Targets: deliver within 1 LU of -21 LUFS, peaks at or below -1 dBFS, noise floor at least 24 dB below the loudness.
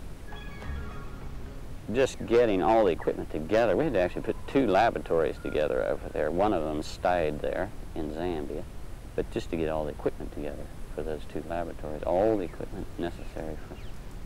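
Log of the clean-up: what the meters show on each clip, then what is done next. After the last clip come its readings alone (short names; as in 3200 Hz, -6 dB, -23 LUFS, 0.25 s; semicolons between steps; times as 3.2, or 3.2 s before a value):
clipped 0.3%; flat tops at -15.5 dBFS; noise floor -43 dBFS; noise floor target -53 dBFS; loudness -29.0 LUFS; peak -15.5 dBFS; loudness target -21.0 LUFS
-> clip repair -15.5 dBFS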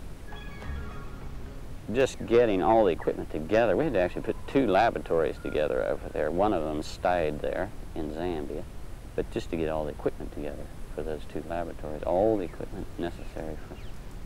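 clipped 0.0%; noise floor -43 dBFS; noise floor target -53 dBFS
-> noise print and reduce 10 dB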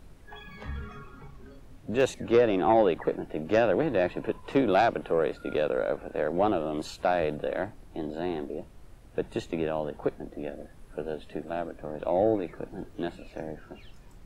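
noise floor -51 dBFS; noise floor target -53 dBFS
-> noise print and reduce 6 dB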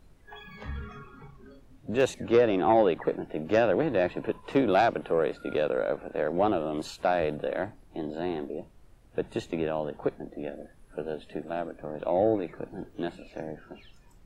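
noise floor -56 dBFS; loudness -28.5 LUFS; peak -9.5 dBFS; loudness target -21.0 LUFS
-> gain +7.5 dB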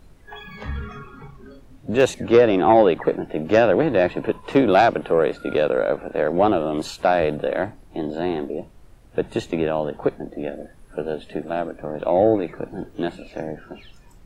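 loudness -21.0 LUFS; peak -2.0 dBFS; noise floor -48 dBFS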